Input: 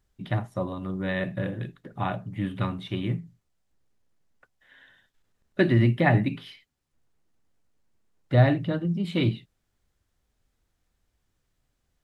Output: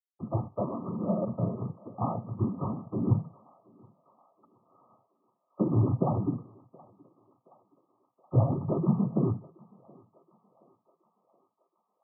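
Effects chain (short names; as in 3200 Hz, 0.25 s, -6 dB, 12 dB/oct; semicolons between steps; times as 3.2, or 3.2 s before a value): dynamic EQ 150 Hz, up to +4 dB, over -30 dBFS, Q 0.92; compressor 4:1, threshold -23 dBFS, peak gain reduction 11 dB; companded quantiser 4-bit; noise vocoder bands 16; brick-wall FIR low-pass 1300 Hz; thinning echo 0.723 s, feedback 70%, high-pass 510 Hz, level -21 dB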